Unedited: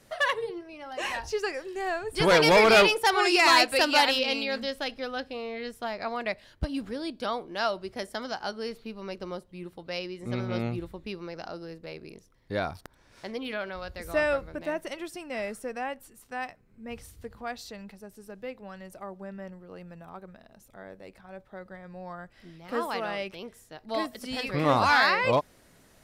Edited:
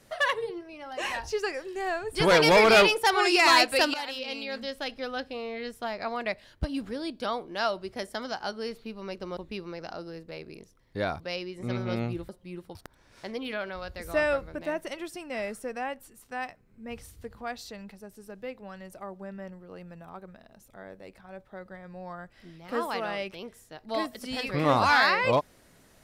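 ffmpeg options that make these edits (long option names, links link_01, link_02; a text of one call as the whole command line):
ffmpeg -i in.wav -filter_complex "[0:a]asplit=6[link_01][link_02][link_03][link_04][link_05][link_06];[link_01]atrim=end=3.94,asetpts=PTS-STARTPTS,afade=type=out:start_time=3.936:duration=0.004:curve=hsin:silence=0.158489[link_07];[link_02]atrim=start=3.94:end=9.372,asetpts=PTS-STARTPTS,afade=type=in:duration=1.14:silence=0.158489[link_08];[link_03]atrim=start=10.918:end=12.752[link_09];[link_04]atrim=start=9.828:end=10.922[link_10];[link_05]atrim=start=9.368:end=9.832[link_11];[link_06]atrim=start=12.748[link_12];[link_07][link_08]concat=n=2:v=0:a=1[link_13];[link_13][link_09]acrossfade=duration=0.004:curve1=hsin:curve2=hsin[link_14];[link_14][link_10]acrossfade=duration=0.004:curve1=hsin:curve2=hsin[link_15];[link_15][link_11]acrossfade=duration=0.004:curve1=hsin:curve2=hsin[link_16];[link_16][link_12]acrossfade=duration=0.004:curve1=hsin:curve2=hsin" out.wav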